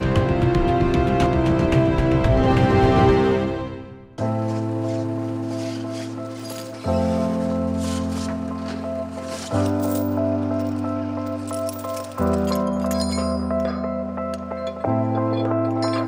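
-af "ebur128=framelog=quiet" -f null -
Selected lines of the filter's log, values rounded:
Integrated loudness:
  I:         -22.2 LUFS
  Threshold: -32.2 LUFS
Loudness range:
  LRA:         7.0 LU
  Threshold: -42.7 LUFS
  LRA low:   -25.4 LUFS
  LRA high:  -18.4 LUFS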